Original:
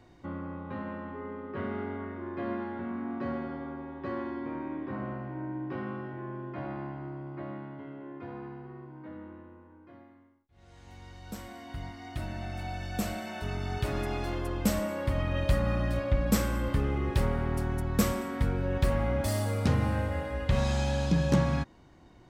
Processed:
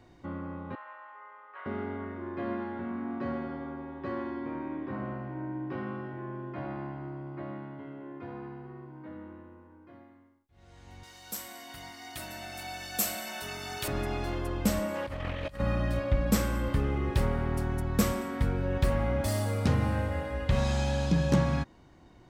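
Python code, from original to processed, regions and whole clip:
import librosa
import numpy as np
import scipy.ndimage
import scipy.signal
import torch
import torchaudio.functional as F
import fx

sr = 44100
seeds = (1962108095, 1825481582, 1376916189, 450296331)

y = fx.chain(x, sr, fx.highpass(hz=830.0, slope=24),
    fx.air_absorb(metres=300.0), at=(0.75, 1.66))
y = fx.chain(y, sr, fx.riaa(side='recording'),
    fx.echo_single(ms=983, db=-15.5), at=(11.03, 13.88))
y = fx.chain(y, sr, fx.low_shelf(hz=500.0, db=-5.5),
    fx.over_compress(threshold_db=-35.0, ratio=-0.5),
    fx.doppler_dist(depth_ms=0.39), at=(14.94, 15.6))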